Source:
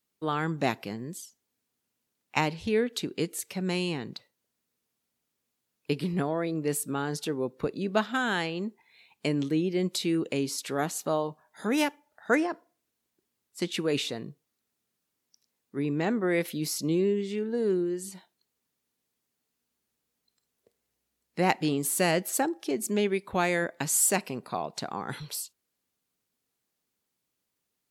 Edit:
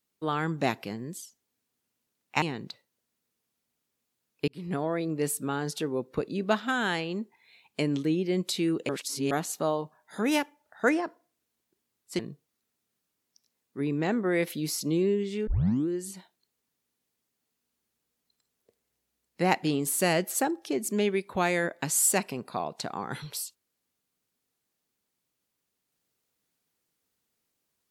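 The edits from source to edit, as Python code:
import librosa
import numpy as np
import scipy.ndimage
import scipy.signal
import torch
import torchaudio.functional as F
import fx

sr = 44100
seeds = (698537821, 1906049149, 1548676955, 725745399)

y = fx.edit(x, sr, fx.cut(start_s=2.42, length_s=1.46),
    fx.fade_in_span(start_s=5.94, length_s=0.36),
    fx.reverse_span(start_s=10.35, length_s=0.42),
    fx.cut(start_s=13.65, length_s=0.52),
    fx.tape_start(start_s=17.45, length_s=0.41), tone=tone)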